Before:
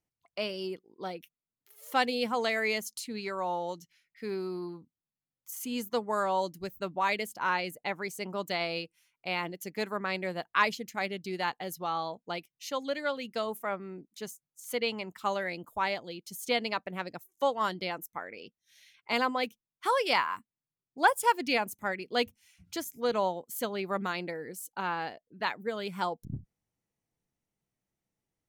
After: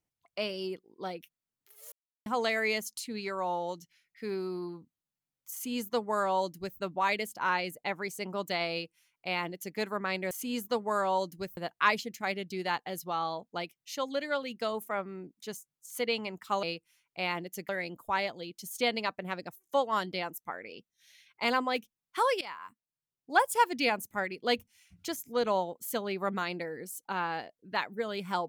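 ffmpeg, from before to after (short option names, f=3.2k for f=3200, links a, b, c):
-filter_complex "[0:a]asplit=8[a][b][c][d][e][f][g][h];[a]atrim=end=1.92,asetpts=PTS-STARTPTS,afade=t=out:st=1.916:d=0.004:c=hsin[i];[b]atrim=start=1.92:end=2.26,asetpts=PTS-STARTPTS,volume=0[j];[c]atrim=start=2.26:end=10.312,asetpts=PTS-STARTPTS,afade=t=in:d=0.004:c=hsin[k];[d]atrim=start=5.528:end=6.792[l];[e]atrim=start=10.308:end=15.372[m];[f]atrim=start=8.708:end=9.772[n];[g]atrim=start=15.368:end=20.09,asetpts=PTS-STARTPTS,afade=t=out:st=4.718:d=0.004:c=hsin:silence=0.1[o];[h]atrim=start=20.09,asetpts=PTS-STARTPTS,afade=t=in:d=1.15:silence=0.1[p];[i][j][k]concat=n=3:v=0:a=1[q];[q][l]acrossfade=d=0.004:c1=hsin:c2=hsin[r];[r][m]acrossfade=d=0.004:c1=hsin:c2=hsin[s];[s][n]acrossfade=d=0.004:c1=hsin:c2=hsin[t];[o][p]concat=n=2:v=0:a=1[u];[t][u]acrossfade=d=0.004:c1=hsin:c2=hsin"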